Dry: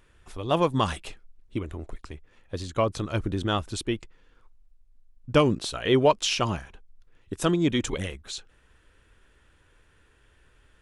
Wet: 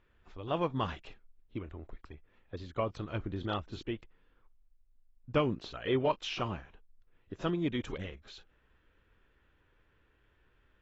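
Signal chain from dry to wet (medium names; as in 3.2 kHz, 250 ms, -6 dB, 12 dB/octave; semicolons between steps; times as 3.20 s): low-pass 3.3 kHz 12 dB/octave; trim -9 dB; AAC 24 kbps 22.05 kHz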